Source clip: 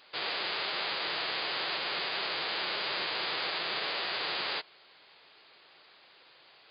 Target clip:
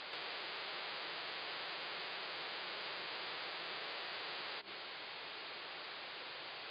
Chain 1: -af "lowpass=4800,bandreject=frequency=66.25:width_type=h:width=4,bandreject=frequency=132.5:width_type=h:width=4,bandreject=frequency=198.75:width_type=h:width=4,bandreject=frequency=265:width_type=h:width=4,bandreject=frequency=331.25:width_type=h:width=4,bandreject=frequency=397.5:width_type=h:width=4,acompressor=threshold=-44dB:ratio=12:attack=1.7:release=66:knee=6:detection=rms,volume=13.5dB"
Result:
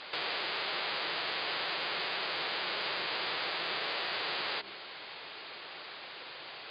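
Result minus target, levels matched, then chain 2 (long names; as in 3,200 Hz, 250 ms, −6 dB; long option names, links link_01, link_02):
downward compressor: peak gain reduction −9.5 dB
-af "lowpass=4800,bandreject=frequency=66.25:width_type=h:width=4,bandreject=frequency=132.5:width_type=h:width=4,bandreject=frequency=198.75:width_type=h:width=4,bandreject=frequency=265:width_type=h:width=4,bandreject=frequency=331.25:width_type=h:width=4,bandreject=frequency=397.5:width_type=h:width=4,acompressor=threshold=-54.5dB:ratio=12:attack=1.7:release=66:knee=6:detection=rms,volume=13.5dB"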